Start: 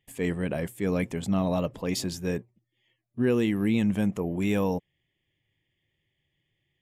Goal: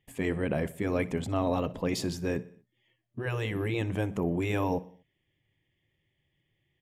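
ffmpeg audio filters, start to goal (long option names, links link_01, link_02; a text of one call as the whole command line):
ffmpeg -i in.wav -af "highshelf=frequency=3400:gain=-8,aecho=1:1:61|122|183|244:0.1|0.053|0.0281|0.0149,afftfilt=real='re*lt(hypot(re,im),0.316)':imag='im*lt(hypot(re,im),0.316)':win_size=1024:overlap=0.75,volume=2dB" out.wav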